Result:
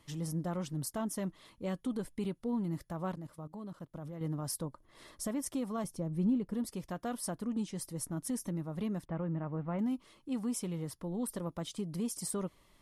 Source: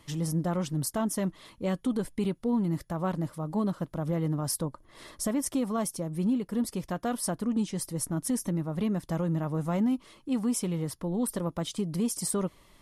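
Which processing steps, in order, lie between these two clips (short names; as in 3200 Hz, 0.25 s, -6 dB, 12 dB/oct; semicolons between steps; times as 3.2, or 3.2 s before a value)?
3.14–4.21 level quantiser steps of 18 dB; 5.84–6.54 tilt -2 dB/oct; 9.05–9.79 inverse Chebyshev low-pass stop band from 9700 Hz, stop band 70 dB; gain -7 dB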